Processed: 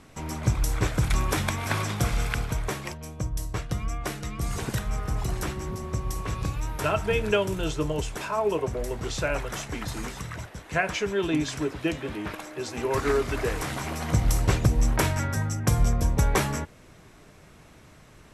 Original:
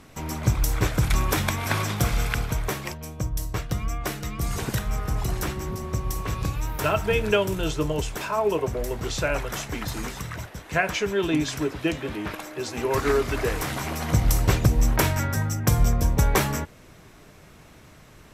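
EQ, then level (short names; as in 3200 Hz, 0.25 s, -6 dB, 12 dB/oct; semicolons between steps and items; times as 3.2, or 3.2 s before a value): Chebyshev low-pass 12000 Hz, order 5; -2.0 dB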